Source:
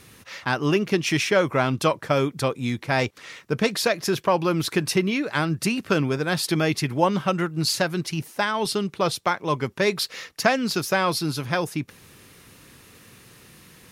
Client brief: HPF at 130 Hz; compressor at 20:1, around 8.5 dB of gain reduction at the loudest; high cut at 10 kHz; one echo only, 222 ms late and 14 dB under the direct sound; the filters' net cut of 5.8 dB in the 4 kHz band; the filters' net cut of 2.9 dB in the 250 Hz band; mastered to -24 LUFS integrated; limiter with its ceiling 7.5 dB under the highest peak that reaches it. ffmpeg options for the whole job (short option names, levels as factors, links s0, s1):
-af "highpass=130,lowpass=10000,equalizer=f=250:t=o:g=-3.5,equalizer=f=4000:t=o:g=-7.5,acompressor=threshold=0.0708:ratio=20,alimiter=limit=0.126:level=0:latency=1,aecho=1:1:222:0.2,volume=2.24"